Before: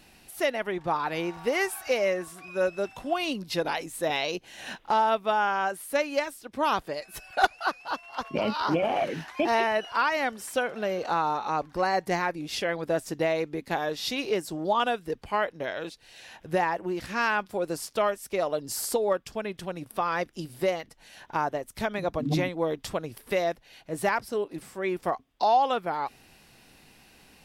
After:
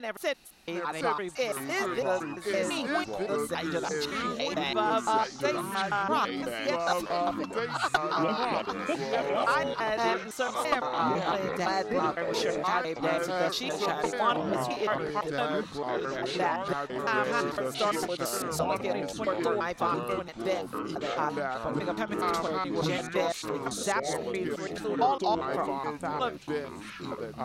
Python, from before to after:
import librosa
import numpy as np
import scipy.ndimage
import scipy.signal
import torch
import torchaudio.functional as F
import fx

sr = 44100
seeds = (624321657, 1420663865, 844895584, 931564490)

y = fx.block_reorder(x, sr, ms=169.0, group=4)
y = fx.echo_pitch(y, sr, ms=712, semitones=-4, count=3, db_per_echo=-3.0)
y = fx.graphic_eq_31(y, sr, hz=(100, 1250, 4000, 6300), db=(-11, 6, 6, 4))
y = F.gain(torch.from_numpy(y), -4.5).numpy()